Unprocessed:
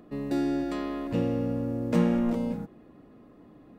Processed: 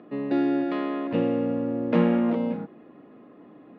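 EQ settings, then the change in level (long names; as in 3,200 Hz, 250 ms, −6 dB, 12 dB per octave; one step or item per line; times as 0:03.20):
high-pass filter 210 Hz 12 dB per octave
low-pass filter 3,300 Hz 24 dB per octave
+5.0 dB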